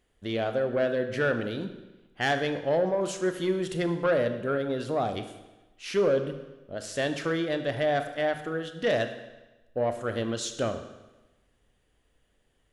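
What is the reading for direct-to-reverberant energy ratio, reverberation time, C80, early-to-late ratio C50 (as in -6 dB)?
7.5 dB, 1.1 s, 12.0 dB, 10.0 dB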